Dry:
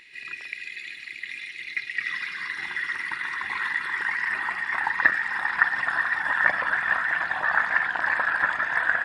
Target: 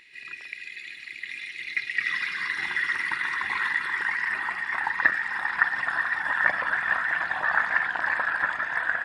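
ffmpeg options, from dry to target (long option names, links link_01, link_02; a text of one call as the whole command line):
ffmpeg -i in.wav -af "dynaudnorm=framelen=440:gausssize=7:maxgain=6dB,volume=-3dB" out.wav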